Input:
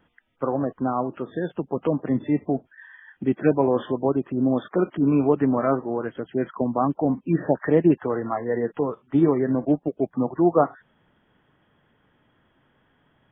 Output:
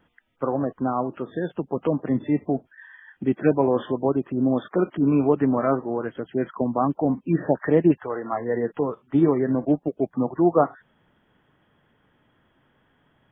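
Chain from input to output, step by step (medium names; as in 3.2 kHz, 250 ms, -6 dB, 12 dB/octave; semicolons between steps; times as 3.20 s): 7.91–8.32 s: peaking EQ 390 Hz -> 83 Hz -13 dB 1.7 oct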